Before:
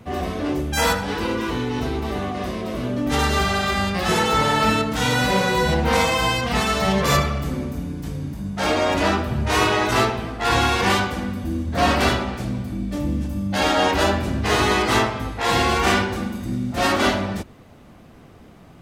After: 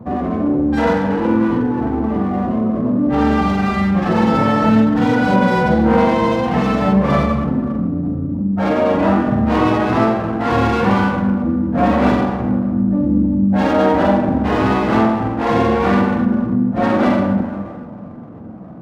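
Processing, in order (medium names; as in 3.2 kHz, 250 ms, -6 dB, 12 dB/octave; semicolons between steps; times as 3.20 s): CVSD coder 64 kbps; high-pass 230 Hz 12 dB/octave; tilt EQ -4.5 dB/octave; spectral gate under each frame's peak -30 dB strong; on a send: flutter echo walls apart 7.7 m, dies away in 0.42 s; on the sum: reverberation RT60 1.8 s, pre-delay 33 ms, DRR 6.5 dB; in parallel at +1.5 dB: compression, threshold -27 dBFS, peak gain reduction 17.5 dB; on the sum: peaking EQ 400 Hz -9 dB 0.22 oct; sliding maximum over 5 samples; trim -1 dB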